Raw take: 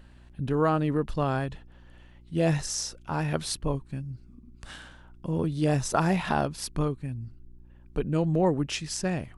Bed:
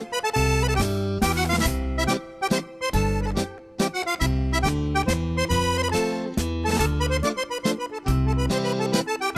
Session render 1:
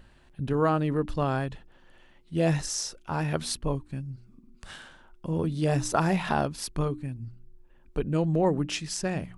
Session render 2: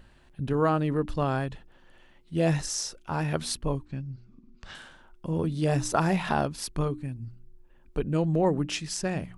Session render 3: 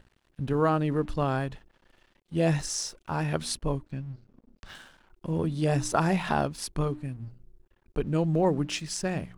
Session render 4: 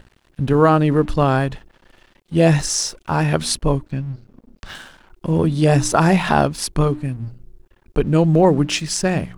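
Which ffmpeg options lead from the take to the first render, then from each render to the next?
-af "bandreject=f=60:t=h:w=4,bandreject=f=120:t=h:w=4,bandreject=f=180:t=h:w=4,bandreject=f=240:t=h:w=4,bandreject=f=300:t=h:w=4"
-filter_complex "[0:a]asettb=1/sr,asplit=3[s0][s1][s2];[s0]atrim=end=3.854[s3];[s1]atrim=start=3.85:end=4.75,asetpts=PTS-STARTPTS,afade=t=in:d=0.004:c=qsin,afade=t=out:st=0.896:d=0.004:c=qsin,lowpass=f=6100:w=0.5412,lowpass=f=6100:w=1.3066[s4];[s2]atrim=start=4.746[s5];[s3][s4]acrossfade=d=0.004:c1=hsin:c2=qsin[s6];[s6][s5]acrossfade=d=0.004:c1=qsin:c2=hsin"
-af "aeval=exprs='sgn(val(0))*max(abs(val(0))-0.00168,0)':c=same"
-af "volume=3.55,alimiter=limit=0.708:level=0:latency=1"

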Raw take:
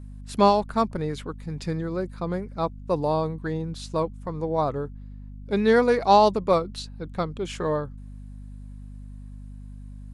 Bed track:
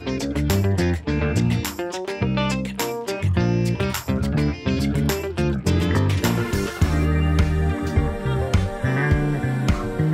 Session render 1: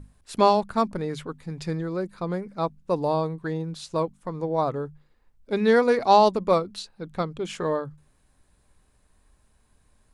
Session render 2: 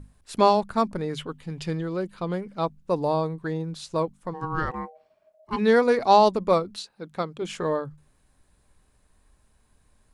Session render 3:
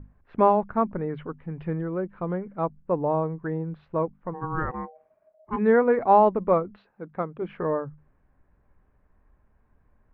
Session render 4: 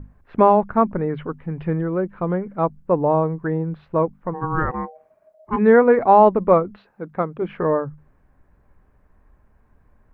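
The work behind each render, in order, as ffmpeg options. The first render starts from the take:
-af "bandreject=f=50:t=h:w=6,bandreject=f=100:t=h:w=6,bandreject=f=150:t=h:w=6,bandreject=f=200:t=h:w=6,bandreject=f=250:t=h:w=6"
-filter_complex "[0:a]asettb=1/sr,asplit=3[s0][s1][s2];[s0]atrim=end=1.174[s3];[s1]atrim=start=1.17:end=2.65,asetpts=PTS-STARTPTS,afade=t=in:d=0.004:c=qsin,afade=t=out:st=1.476:d=0.004:c=qsin,equalizer=f=3000:w=4.8:g=12[s4];[s2]atrim=start=2.646[s5];[s3][s4]acrossfade=d=0.004:c1=hsin:c2=qsin[s6];[s6][s5]acrossfade=d=0.004:c1=qsin:c2=hsin,asplit=3[s7][s8][s9];[s7]afade=t=out:st=4.33:d=0.02[s10];[s8]aeval=exprs='val(0)*sin(2*PI*630*n/s)':c=same,afade=t=in:st=4.33:d=0.02,afade=t=out:st=5.57:d=0.02[s11];[s9]afade=t=in:st=5.57:d=0.02[s12];[s10][s11][s12]amix=inputs=3:normalize=0,asettb=1/sr,asplit=3[s13][s14][s15];[s13]atrim=end=6.764[s16];[s14]atrim=start=6.76:end=7.42,asetpts=PTS-STARTPTS,afade=t=in:d=0.004:c=qsin,afade=t=out:st=0.656:d=0.004:c=qsin,highpass=f=230:p=1[s17];[s15]atrim=start=7.416[s18];[s16][s17]acrossfade=d=0.004:c1=hsin:c2=qsin[s19];[s19][s18]acrossfade=d=0.004:c1=qsin:c2=hsin"
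-af "lowpass=f=2100:w=0.5412,lowpass=f=2100:w=1.3066,aemphasis=mode=reproduction:type=75kf"
-af "volume=2.11,alimiter=limit=0.708:level=0:latency=1"

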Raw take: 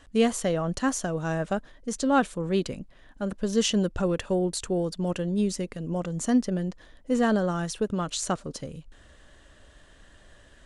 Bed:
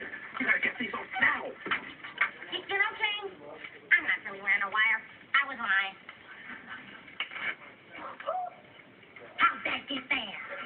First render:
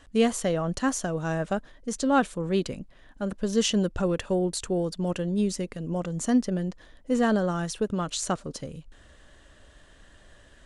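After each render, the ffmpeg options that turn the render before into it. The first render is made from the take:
-af anull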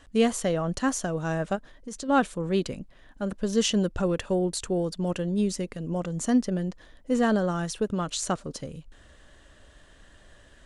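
-filter_complex "[0:a]asplit=3[s0][s1][s2];[s0]afade=t=out:st=1.55:d=0.02[s3];[s1]acompressor=threshold=0.02:ratio=4:attack=3.2:release=140:knee=1:detection=peak,afade=t=in:st=1.55:d=0.02,afade=t=out:st=2.08:d=0.02[s4];[s2]afade=t=in:st=2.08:d=0.02[s5];[s3][s4][s5]amix=inputs=3:normalize=0"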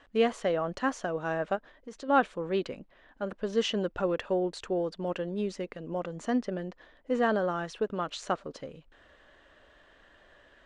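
-af "lowpass=6100,bass=f=250:g=-13,treble=f=4000:g=-12"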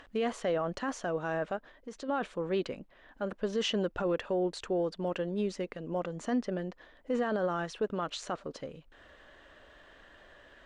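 -af "alimiter=limit=0.075:level=0:latency=1:release=14,acompressor=mode=upward:threshold=0.00316:ratio=2.5"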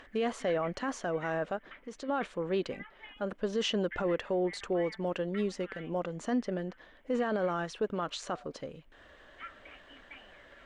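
-filter_complex "[1:a]volume=0.0841[s0];[0:a][s0]amix=inputs=2:normalize=0"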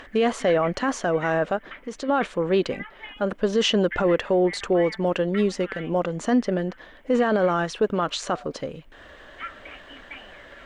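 -af "volume=3.16"

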